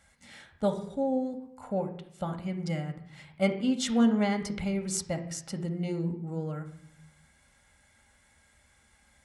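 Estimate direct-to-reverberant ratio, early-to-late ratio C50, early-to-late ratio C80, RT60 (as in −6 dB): 4.5 dB, 10.5 dB, 13.5 dB, 0.65 s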